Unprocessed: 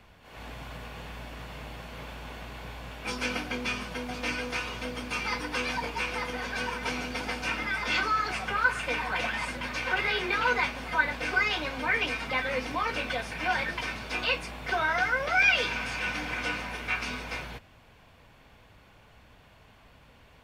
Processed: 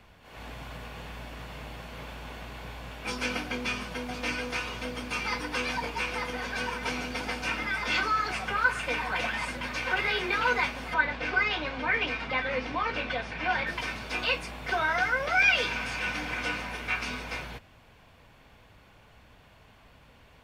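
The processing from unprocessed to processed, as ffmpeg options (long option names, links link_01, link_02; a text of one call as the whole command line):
ffmpeg -i in.wav -filter_complex "[0:a]asettb=1/sr,asplit=3[link_01][link_02][link_03];[link_01]atrim=end=10.944[link_04];[link_02]atrim=start=10.94:end=13.67,asetpts=PTS-STARTPTS,afade=type=in:duration=0.004:curve=qsin,afade=type=out:start_time=2.726:duration=0.004:curve=qsin,lowpass=4300[link_05];[link_03]atrim=start=13.666[link_06];[link_04][link_05]acrossfade=duration=0.004:curve1=hsin:curve2=qsin[link_07];[link_07][link_06]acrossfade=duration=0.004:curve1=qsin:curve2=hsin" out.wav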